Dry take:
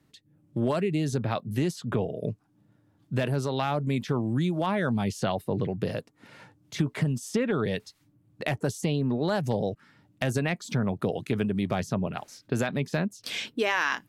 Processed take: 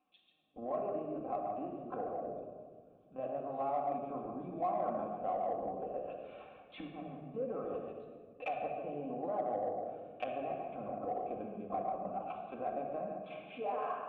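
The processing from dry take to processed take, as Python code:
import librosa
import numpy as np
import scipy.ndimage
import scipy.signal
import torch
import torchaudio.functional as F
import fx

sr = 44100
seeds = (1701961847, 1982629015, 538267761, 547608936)

p1 = fx.high_shelf(x, sr, hz=2900.0, db=7.0)
p2 = p1 + fx.echo_single(p1, sr, ms=141, db=-5.5, dry=0)
p3 = fx.env_lowpass_down(p2, sr, base_hz=750.0, full_db=-25.5)
p4 = fx.lpc_vocoder(p3, sr, seeds[0], excitation='pitch_kept', order=16)
p5 = fx.vowel_filter(p4, sr, vowel='a')
p6 = fx.peak_eq(p5, sr, hz=100.0, db=-4.0, octaves=0.91)
p7 = fx.room_shoebox(p6, sr, seeds[1], volume_m3=2200.0, walls='mixed', distance_m=2.1)
p8 = 10.0 ** (-32.5 / 20.0) * np.tanh(p7 / 10.0 ** (-32.5 / 20.0))
p9 = p7 + (p8 * 10.0 ** (-7.0 / 20.0))
y = p9 * 10.0 ** (-1.0 / 20.0)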